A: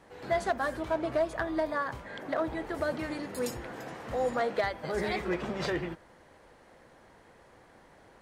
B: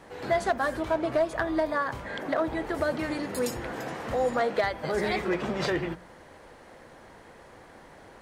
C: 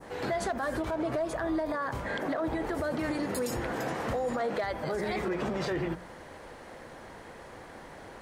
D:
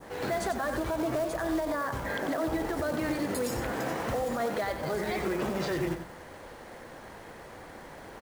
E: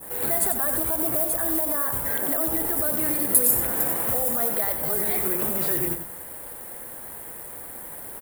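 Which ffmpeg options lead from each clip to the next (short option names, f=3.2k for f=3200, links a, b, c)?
-filter_complex "[0:a]bandreject=f=60:t=h:w=6,bandreject=f=120:t=h:w=6,bandreject=f=180:t=h:w=6,asplit=2[a][b];[b]acompressor=threshold=-38dB:ratio=6,volume=-1dB[c];[a][c]amix=inputs=2:normalize=0,volume=1.5dB"
-af "adynamicequalizer=threshold=0.00708:dfrequency=3000:dqfactor=0.74:tfrequency=3000:tqfactor=0.74:attack=5:release=100:ratio=0.375:range=2:mode=cutabove:tftype=bell,alimiter=level_in=3dB:limit=-24dB:level=0:latency=1:release=56,volume=-3dB,volume=3.5dB"
-af "acrusher=bits=4:mode=log:mix=0:aa=0.000001,aecho=1:1:93:0.376"
-af "aexciter=amount=11.4:drive=9.1:freq=8.7k"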